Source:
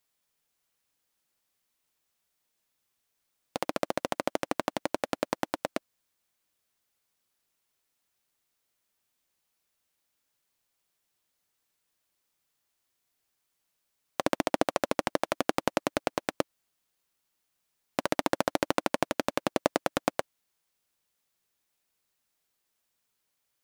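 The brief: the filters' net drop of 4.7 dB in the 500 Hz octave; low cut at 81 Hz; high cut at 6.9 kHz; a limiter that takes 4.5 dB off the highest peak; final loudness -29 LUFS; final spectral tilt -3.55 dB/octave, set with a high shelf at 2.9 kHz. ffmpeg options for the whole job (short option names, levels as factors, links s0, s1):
-af "highpass=81,lowpass=6900,equalizer=f=500:t=o:g=-5.5,highshelf=f=2900:g=-9,volume=2.51,alimiter=limit=0.531:level=0:latency=1"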